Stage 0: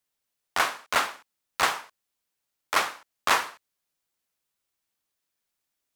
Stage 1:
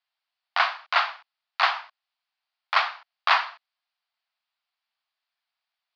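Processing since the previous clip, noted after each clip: Chebyshev band-pass 680–4700 Hz, order 4; gain +3 dB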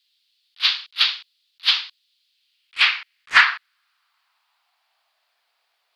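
high-pass sweep 3600 Hz -> 460 Hz, 2.29–5.54; sine folder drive 8 dB, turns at -3.5 dBFS; attack slew limiter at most 540 dB/s; gain +2.5 dB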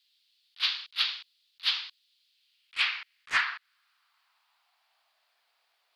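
compressor 4:1, threshold -23 dBFS, peak gain reduction 12.5 dB; gain -2.5 dB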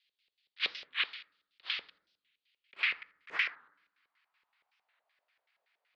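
LFO band-pass square 5.3 Hz 460–2100 Hz; on a send at -13.5 dB: reverb RT60 0.75 s, pre-delay 3 ms; on the sum: record warp 45 rpm, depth 250 cents; gain +3 dB

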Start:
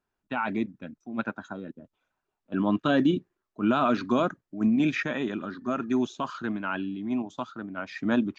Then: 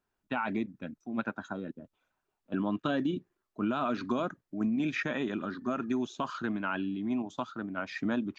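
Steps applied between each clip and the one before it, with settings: compressor 4:1, threshold -28 dBFS, peak gain reduction 9 dB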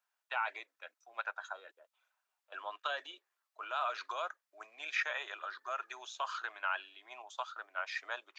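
Bessel high-pass 1000 Hz, order 8; gain +1 dB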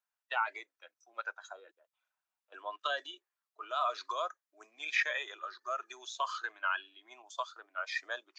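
spectral noise reduction 11 dB; gain +4 dB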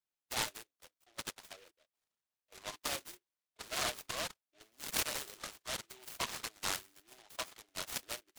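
noise-modulated delay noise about 2400 Hz, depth 0.22 ms; gain -4 dB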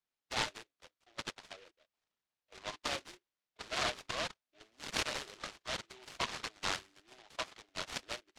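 LPF 5100 Hz 12 dB/oct; gain +2.5 dB

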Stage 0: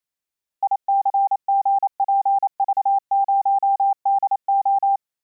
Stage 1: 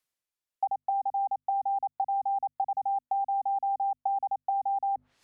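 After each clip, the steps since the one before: treble ducked by the level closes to 640 Hz, closed at -18.5 dBFS; notches 50/100/150/200/250 Hz; reverse; upward compressor, threshold -42 dBFS; reverse; gain -5 dB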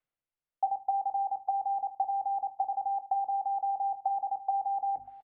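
air absorption 480 m; echo 0.591 s -20 dB; reverb RT60 0.25 s, pre-delay 6 ms, DRR 8 dB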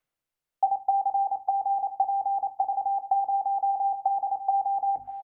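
echo 0.605 s -17.5 dB; gain +5.5 dB

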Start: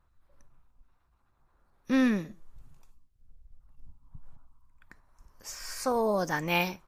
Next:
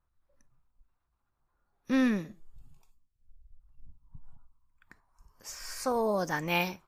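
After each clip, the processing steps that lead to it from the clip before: spectral noise reduction 8 dB; gain -1.5 dB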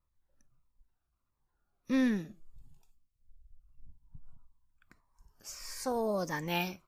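cascading phaser falling 1.6 Hz; gain -2 dB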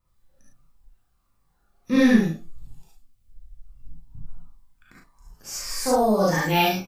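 doubler 37 ms -5 dB; non-linear reverb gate 90 ms rising, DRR -5 dB; gain +5.5 dB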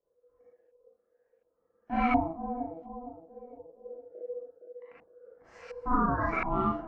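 dark delay 0.462 s, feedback 35%, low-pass 440 Hz, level -8 dB; LFO low-pass saw up 1.4 Hz 460–2000 Hz; ring modulator 490 Hz; gain -8 dB

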